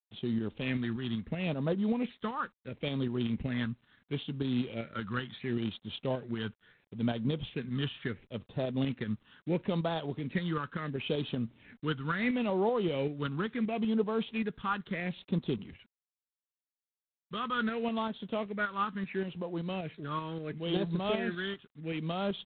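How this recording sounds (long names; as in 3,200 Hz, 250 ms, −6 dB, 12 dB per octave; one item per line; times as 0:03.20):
tremolo saw up 5.2 Hz, depth 45%
phaser sweep stages 8, 0.73 Hz, lowest notch 640–2,100 Hz
G.726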